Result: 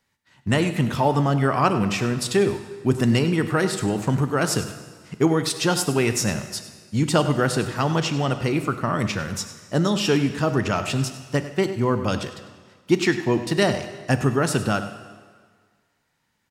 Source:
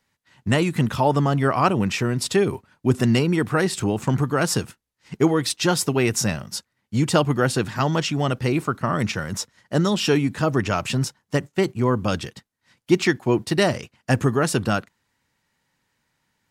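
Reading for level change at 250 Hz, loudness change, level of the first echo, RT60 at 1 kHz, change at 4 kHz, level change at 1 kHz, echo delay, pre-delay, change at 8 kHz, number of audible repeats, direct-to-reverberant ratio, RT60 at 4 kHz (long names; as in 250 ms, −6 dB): −0.5 dB, −0.5 dB, −14.0 dB, 1.7 s, −0.5 dB, −0.5 dB, 100 ms, 12 ms, −0.5 dB, 1, 8.5 dB, 1.5 s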